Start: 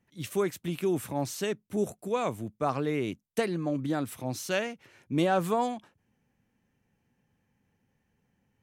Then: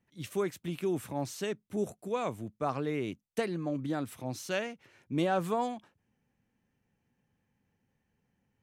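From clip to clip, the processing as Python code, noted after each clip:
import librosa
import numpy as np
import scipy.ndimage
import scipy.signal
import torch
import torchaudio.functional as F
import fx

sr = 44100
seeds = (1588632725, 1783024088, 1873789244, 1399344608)

y = fx.high_shelf(x, sr, hz=9500.0, db=-5.0)
y = y * librosa.db_to_amplitude(-3.5)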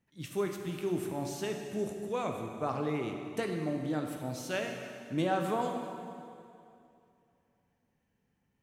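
y = fx.rev_plate(x, sr, seeds[0], rt60_s=2.6, hf_ratio=0.85, predelay_ms=0, drr_db=3.0)
y = y * librosa.db_to_amplitude(-2.0)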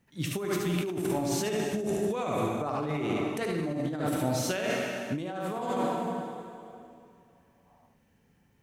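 y = fx.spec_box(x, sr, start_s=7.67, length_s=0.21, low_hz=560.0, high_hz=1300.0, gain_db=10)
y = y + 10.0 ** (-4.0 / 20.0) * np.pad(y, (int(74 * sr / 1000.0), 0))[:len(y)]
y = fx.over_compress(y, sr, threshold_db=-36.0, ratio=-1.0)
y = y * librosa.db_to_amplitude(6.0)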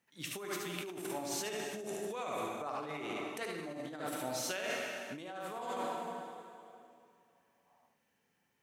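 y = fx.highpass(x, sr, hz=760.0, slope=6)
y = y * librosa.db_to_amplitude(-4.0)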